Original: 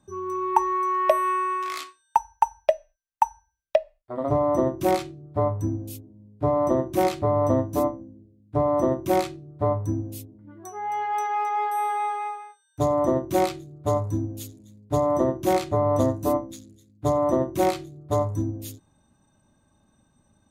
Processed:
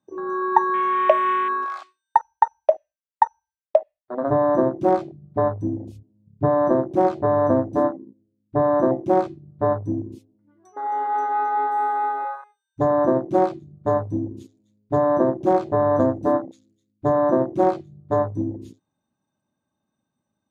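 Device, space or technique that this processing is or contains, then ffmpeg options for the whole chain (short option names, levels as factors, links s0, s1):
over-cleaned archive recording: -filter_complex "[0:a]asettb=1/sr,asplit=3[s0][s1][s2];[s0]atrim=end=5.784[s3];[s1]atrim=start=5.78:end=6.45,asetpts=PTS-STARTPTS,afade=t=in:d=0.004:c=qsin,afade=t=out:st=0.666:d=0.004:c=qsin,asubboost=boost=10:cutoff=230[s4];[s2]atrim=start=6.446[s5];[s3][s4]acrossfade=d=0.004:c1=hsin:c2=qsin[s6];[s6][s5]acrossfade=d=0.004:c1=qsin:c2=hsin,highpass=140,lowpass=6100,afwtdn=0.0398,volume=1.5"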